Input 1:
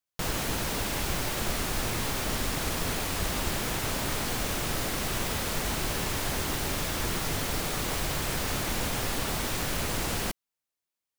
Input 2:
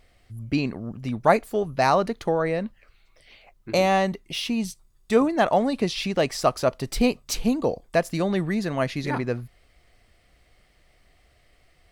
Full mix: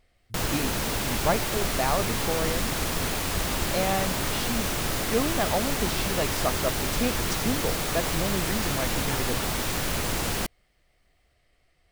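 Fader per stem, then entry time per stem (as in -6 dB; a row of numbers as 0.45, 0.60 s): +2.5, -7.0 dB; 0.15, 0.00 s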